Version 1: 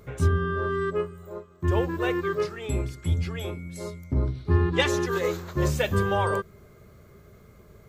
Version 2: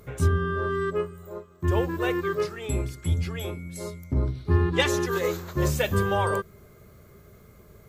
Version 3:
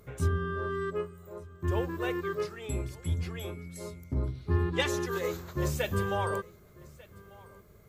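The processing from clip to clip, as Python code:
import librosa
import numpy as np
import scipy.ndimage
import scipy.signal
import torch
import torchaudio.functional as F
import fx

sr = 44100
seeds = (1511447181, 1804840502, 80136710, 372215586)

y1 = fx.peak_eq(x, sr, hz=13000.0, db=6.5, octaves=1.1)
y2 = y1 + 10.0 ** (-22.5 / 20.0) * np.pad(y1, (int(1193 * sr / 1000.0), 0))[:len(y1)]
y2 = y2 * librosa.db_to_amplitude(-6.0)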